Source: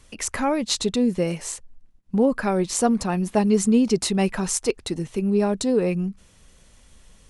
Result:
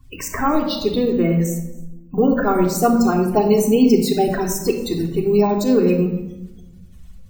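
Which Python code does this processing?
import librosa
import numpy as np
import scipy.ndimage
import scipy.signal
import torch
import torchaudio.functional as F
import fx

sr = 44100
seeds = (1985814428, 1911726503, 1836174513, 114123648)

y = fx.spec_quant(x, sr, step_db=30)
y = fx.lowpass(y, sr, hz=3900.0, slope=12, at=(0.63, 1.45))
y = fx.peak_eq(y, sr, hz=1200.0, db=-10.0, octaves=0.42, at=(3.61, 4.29))
y = fx.spec_topn(y, sr, count=64)
y = y + 10.0 ** (-23.0 / 20.0) * np.pad(y, (int(271 * sr / 1000.0), 0))[:len(y)]
y = fx.room_shoebox(y, sr, seeds[0], volume_m3=3100.0, walls='furnished', distance_m=3.4)
y = np.repeat(scipy.signal.resample_poly(y, 1, 2), 2)[:len(y)]
y = y * 10.0 ** (2.5 / 20.0)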